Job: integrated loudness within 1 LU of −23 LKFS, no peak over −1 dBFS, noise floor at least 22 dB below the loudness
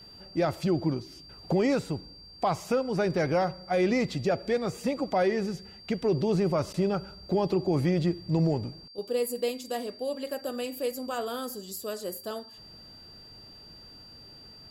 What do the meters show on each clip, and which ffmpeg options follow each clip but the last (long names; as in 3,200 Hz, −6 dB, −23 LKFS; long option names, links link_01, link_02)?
interfering tone 4,700 Hz; level of the tone −48 dBFS; integrated loudness −29.5 LKFS; sample peak −17.0 dBFS; target loudness −23.0 LKFS
→ -af "bandreject=frequency=4700:width=30"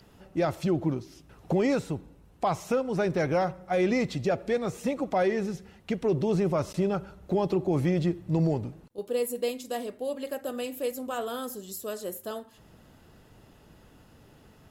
interfering tone none found; integrated loudness −29.5 LKFS; sample peak −17.0 dBFS; target loudness −23.0 LKFS
→ -af "volume=6.5dB"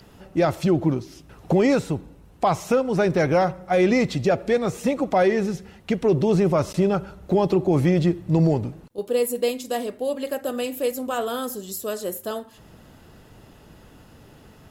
integrated loudness −23.0 LKFS; sample peak −10.5 dBFS; background noise floor −50 dBFS